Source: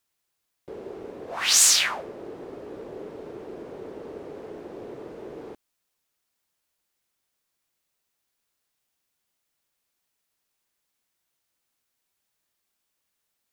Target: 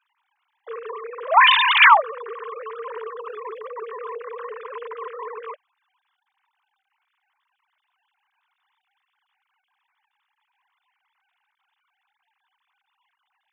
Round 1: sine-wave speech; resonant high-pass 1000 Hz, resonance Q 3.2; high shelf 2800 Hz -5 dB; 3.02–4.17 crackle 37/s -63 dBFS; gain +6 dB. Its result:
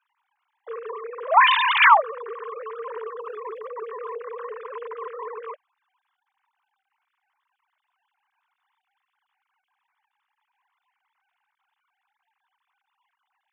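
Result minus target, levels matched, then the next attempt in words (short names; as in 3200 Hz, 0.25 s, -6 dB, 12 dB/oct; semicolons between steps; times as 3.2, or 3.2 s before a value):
4000 Hz band -3.0 dB
sine-wave speech; resonant high-pass 1000 Hz, resonance Q 3.2; high shelf 2800 Hz +5.5 dB; 3.02–4.17 crackle 37/s -63 dBFS; gain +6 dB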